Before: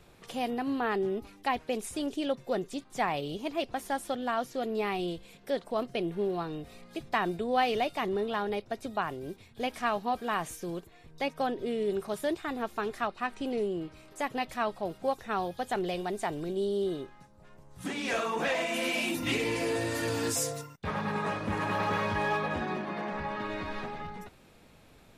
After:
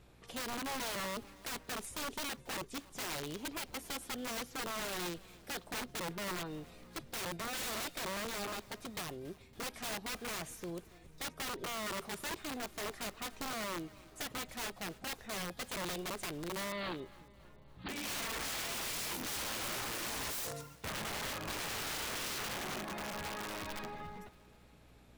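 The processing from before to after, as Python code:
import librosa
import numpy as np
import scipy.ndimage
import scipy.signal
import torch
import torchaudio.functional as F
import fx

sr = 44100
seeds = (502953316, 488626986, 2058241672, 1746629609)

p1 = (np.mod(10.0 ** (28.5 / 20.0) * x + 1.0, 2.0) - 1.0) / 10.0 ** (28.5 / 20.0)
p2 = fx.add_hum(p1, sr, base_hz=60, snr_db=23)
p3 = fx.clip_hard(p2, sr, threshold_db=-32.5, at=(8.46, 8.93))
p4 = fx.steep_lowpass(p3, sr, hz=4500.0, slope=96, at=(16.72, 17.89))
p5 = p4 + fx.echo_feedback(p4, sr, ms=280, feedback_pct=59, wet_db=-22.0, dry=0)
y = F.gain(torch.from_numpy(p5), -6.0).numpy()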